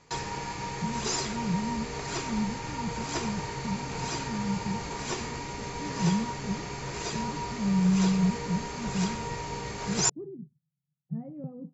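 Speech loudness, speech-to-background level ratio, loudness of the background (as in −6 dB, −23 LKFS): −32.5 LKFS, 1.0 dB, −33.5 LKFS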